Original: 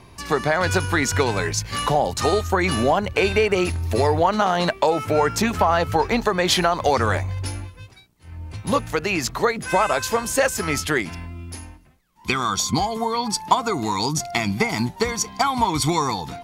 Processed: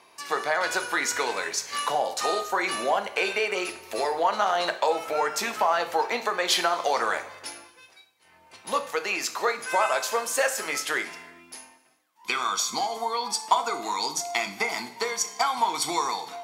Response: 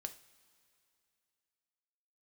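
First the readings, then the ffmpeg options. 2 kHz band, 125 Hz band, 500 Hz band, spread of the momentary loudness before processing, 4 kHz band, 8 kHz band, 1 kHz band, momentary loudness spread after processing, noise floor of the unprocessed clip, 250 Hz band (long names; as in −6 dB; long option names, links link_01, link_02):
−3.0 dB, below −25 dB, −7.0 dB, 7 LU, −3.0 dB, −3.0 dB, −4.0 dB, 6 LU, −47 dBFS, −15.0 dB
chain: -filter_complex "[0:a]highpass=560[link_01];[1:a]atrim=start_sample=2205,afade=type=out:start_time=0.39:duration=0.01,atrim=end_sample=17640,asetrate=35721,aresample=44100[link_02];[link_01][link_02]afir=irnorm=-1:irlink=0,volume=-1dB"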